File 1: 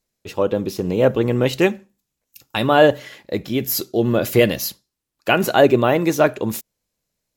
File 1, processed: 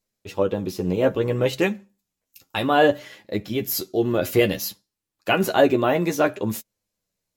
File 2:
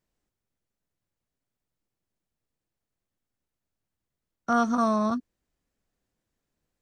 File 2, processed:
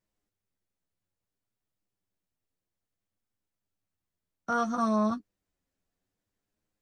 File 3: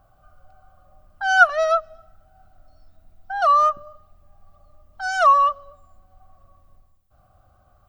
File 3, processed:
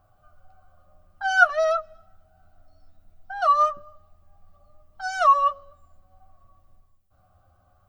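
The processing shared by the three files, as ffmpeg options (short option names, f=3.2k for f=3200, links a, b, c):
-af "flanger=delay=9.5:depth=1.8:regen=23:speed=0.6:shape=sinusoidal"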